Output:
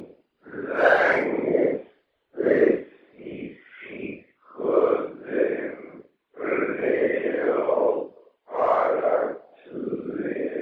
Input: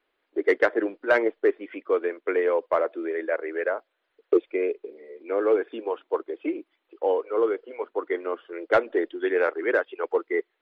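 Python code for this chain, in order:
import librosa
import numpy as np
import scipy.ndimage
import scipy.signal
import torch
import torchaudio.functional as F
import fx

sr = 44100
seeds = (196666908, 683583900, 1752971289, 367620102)

y = fx.paulstretch(x, sr, seeds[0], factor=4.8, window_s=0.05, from_s=0.93)
y = fx.whisperise(y, sr, seeds[1])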